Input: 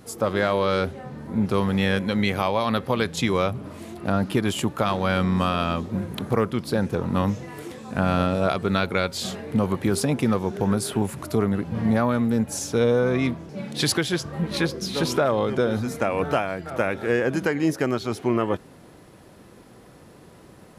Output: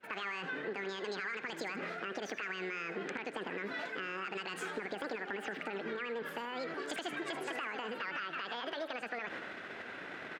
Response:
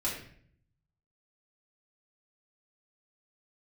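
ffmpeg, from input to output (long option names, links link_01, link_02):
-filter_complex "[0:a]highpass=frequency=140:poles=1,agate=range=-33dB:threshold=-41dB:ratio=3:detection=peak,lowpass=1200,lowshelf=frequency=630:width_type=q:width=3:gain=-6.5,areverse,acompressor=mode=upward:threshold=-28dB:ratio=2.5,areverse,alimiter=limit=-21.5dB:level=0:latency=1:release=79,acompressor=threshold=-36dB:ratio=6,asplit=2[link_01][link_02];[link_02]aecho=0:1:159|318|477|636|795:0.2|0.0958|0.046|0.0221|0.0106[link_03];[link_01][link_03]amix=inputs=2:normalize=0,asetrate=88200,aresample=44100"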